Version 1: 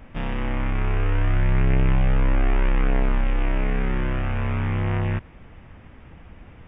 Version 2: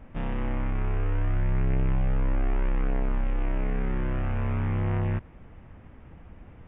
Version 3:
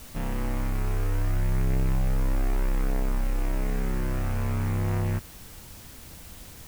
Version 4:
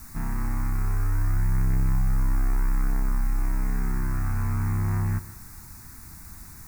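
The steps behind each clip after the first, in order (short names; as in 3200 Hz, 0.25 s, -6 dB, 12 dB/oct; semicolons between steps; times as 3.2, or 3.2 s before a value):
high shelf 2100 Hz -10.5 dB; compressor, threshold -19 dBFS, peak gain reduction 3.5 dB; gain -2.5 dB
requantised 8-bit, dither triangular
fixed phaser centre 1300 Hz, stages 4; on a send at -15.5 dB: reverb RT60 0.45 s, pre-delay 0.117 s; on the sum: gain +2 dB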